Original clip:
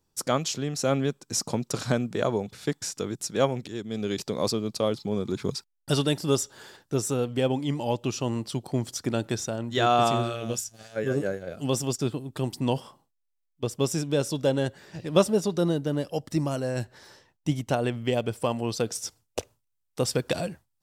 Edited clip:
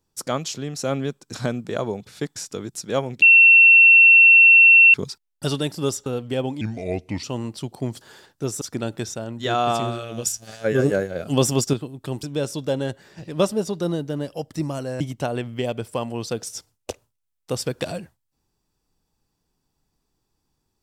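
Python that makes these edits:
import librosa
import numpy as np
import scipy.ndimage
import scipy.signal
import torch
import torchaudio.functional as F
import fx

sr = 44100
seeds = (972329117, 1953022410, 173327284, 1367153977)

y = fx.edit(x, sr, fx.cut(start_s=1.34, length_s=0.46),
    fx.bleep(start_s=3.68, length_s=1.72, hz=2710.0, db=-7.5),
    fx.move(start_s=6.52, length_s=0.6, to_s=8.93),
    fx.speed_span(start_s=7.67, length_s=0.48, speed=0.77),
    fx.clip_gain(start_s=10.57, length_s=1.48, db=7.5),
    fx.cut(start_s=12.55, length_s=1.45),
    fx.cut(start_s=16.77, length_s=0.72), tone=tone)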